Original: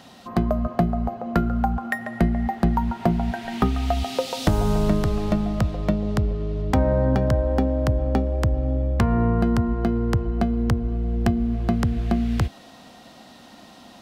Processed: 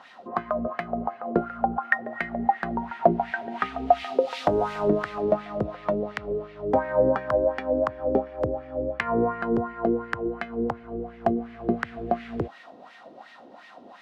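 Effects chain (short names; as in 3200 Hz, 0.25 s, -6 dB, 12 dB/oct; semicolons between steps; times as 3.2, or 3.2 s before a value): wah 2.8 Hz 390–2100 Hz, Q 2.9; gain +8.5 dB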